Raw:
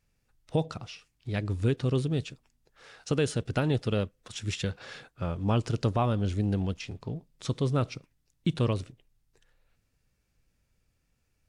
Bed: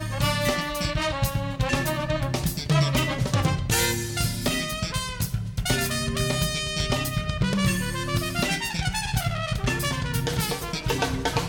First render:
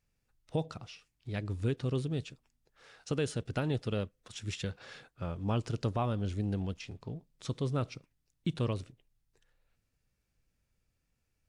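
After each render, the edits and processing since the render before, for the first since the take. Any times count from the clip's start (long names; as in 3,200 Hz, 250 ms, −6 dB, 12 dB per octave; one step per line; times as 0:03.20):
level −5.5 dB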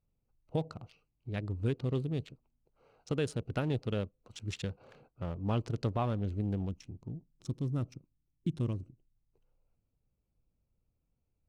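adaptive Wiener filter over 25 samples
0:06.69–0:09.15: gain on a spectral selection 370–5,100 Hz −9 dB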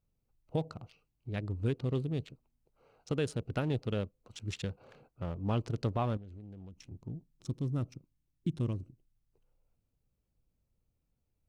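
0:06.17–0:06.91: downward compressor 12 to 1, threshold −45 dBFS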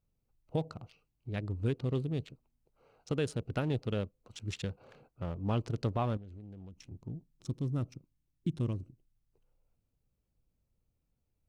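no processing that can be heard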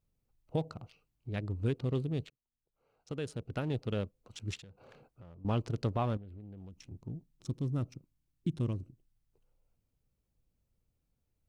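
0:02.30–0:04.05: fade in
0:04.59–0:05.45: downward compressor 16 to 1, threshold −49 dBFS
0:06.17–0:06.58: parametric band 6,400 Hz −14.5 dB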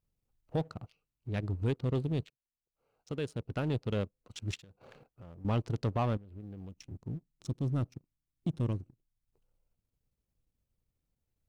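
transient designer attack −2 dB, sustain −7 dB
leveller curve on the samples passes 1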